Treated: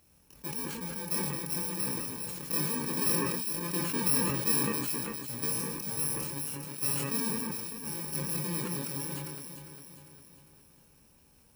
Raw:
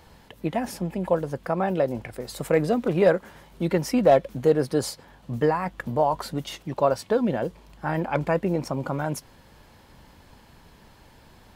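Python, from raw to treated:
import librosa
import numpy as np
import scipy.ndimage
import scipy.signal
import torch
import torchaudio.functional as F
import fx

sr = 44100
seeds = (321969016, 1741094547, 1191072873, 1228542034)

y = fx.bit_reversed(x, sr, seeds[0], block=64)
y = fx.highpass(y, sr, hz=87.0, slope=6)
y = y + 10.0 ** (-15.0 / 20.0) * np.pad(y, (int(111 * sr / 1000.0), 0))[:len(y)]
y = fx.chorus_voices(y, sr, voices=6, hz=0.22, base_ms=25, depth_ms=3.5, mix_pct=35)
y = fx.echo_alternate(y, sr, ms=201, hz=2400.0, feedback_pct=70, wet_db=-3.0)
y = fx.sustainer(y, sr, db_per_s=26.0)
y = F.gain(torch.from_numpy(y), -8.5).numpy()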